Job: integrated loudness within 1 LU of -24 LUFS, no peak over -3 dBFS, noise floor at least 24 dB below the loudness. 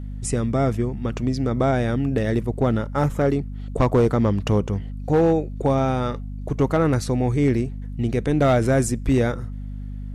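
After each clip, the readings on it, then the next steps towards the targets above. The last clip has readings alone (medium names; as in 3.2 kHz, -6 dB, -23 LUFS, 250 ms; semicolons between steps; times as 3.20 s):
clipped samples 0.8%; clipping level -11.5 dBFS; hum 50 Hz; highest harmonic 250 Hz; hum level -29 dBFS; loudness -22.0 LUFS; peak level -11.5 dBFS; loudness target -24.0 LUFS
-> clip repair -11.5 dBFS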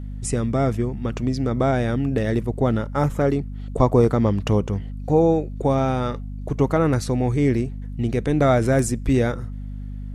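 clipped samples 0.0%; hum 50 Hz; highest harmonic 250 Hz; hum level -28 dBFS
-> de-hum 50 Hz, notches 5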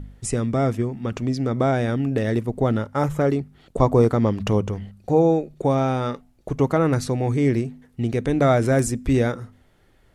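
hum not found; loudness -22.0 LUFS; peak level -4.0 dBFS; loudness target -24.0 LUFS
-> trim -2 dB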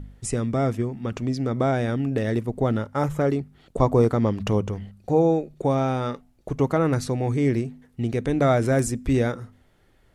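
loudness -24.0 LUFS; peak level -6.0 dBFS; noise floor -59 dBFS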